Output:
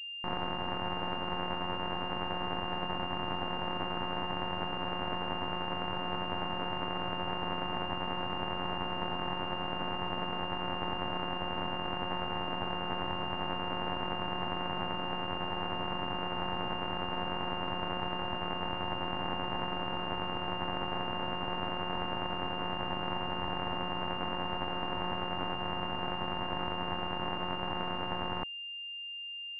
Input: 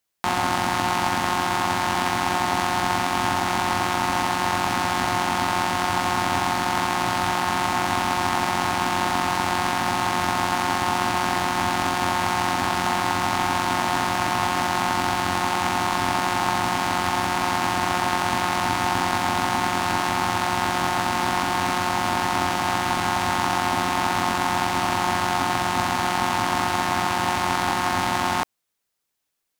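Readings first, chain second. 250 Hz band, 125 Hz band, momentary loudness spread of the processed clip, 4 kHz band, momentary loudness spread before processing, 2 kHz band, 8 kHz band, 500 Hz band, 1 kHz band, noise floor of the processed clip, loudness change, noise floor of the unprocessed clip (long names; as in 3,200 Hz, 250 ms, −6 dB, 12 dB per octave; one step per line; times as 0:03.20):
−11.0 dB, −10.0 dB, 0 LU, can't be measured, 0 LU, −13.0 dB, below −40 dB, −9.0 dB, −14.5 dB, −37 dBFS, −12.5 dB, −26 dBFS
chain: brickwall limiter −12 dBFS, peak gain reduction 7 dB
half-wave rectification
switching amplifier with a slow clock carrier 2,800 Hz
level −5.5 dB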